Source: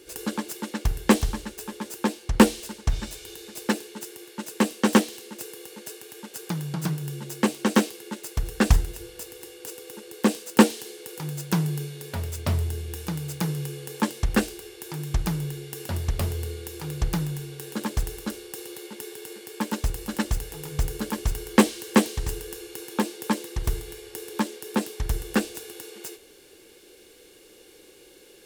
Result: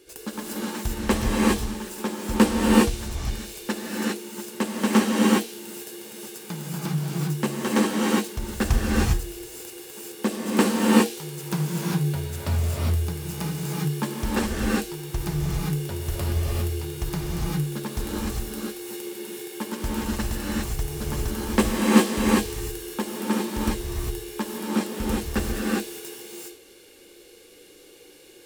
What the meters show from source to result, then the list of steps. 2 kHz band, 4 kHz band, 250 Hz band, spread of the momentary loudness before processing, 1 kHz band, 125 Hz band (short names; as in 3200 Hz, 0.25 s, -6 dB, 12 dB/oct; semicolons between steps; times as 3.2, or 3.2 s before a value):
+1.5 dB, +2.0 dB, +2.5 dB, 17 LU, +1.5 dB, +2.0 dB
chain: non-linear reverb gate 0.43 s rising, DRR -5 dB; gain -4.5 dB